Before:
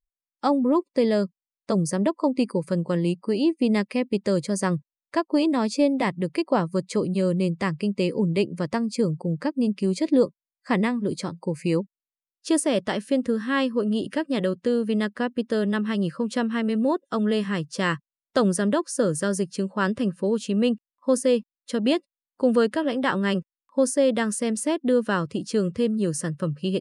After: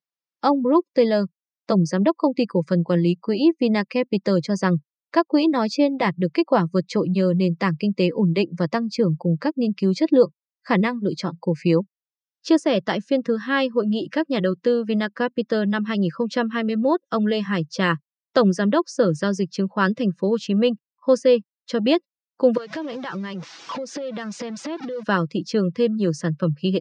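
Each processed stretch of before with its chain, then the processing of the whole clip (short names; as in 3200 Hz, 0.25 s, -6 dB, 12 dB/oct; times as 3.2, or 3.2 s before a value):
22.57–25.03 zero-crossing step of -28 dBFS + LPF 8500 Hz 24 dB/oct + compressor 16:1, threshold -29 dBFS
whole clip: reverb removal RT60 0.55 s; elliptic band-pass 140–5600 Hz, stop band 40 dB; comb 6 ms, depth 30%; gain +4 dB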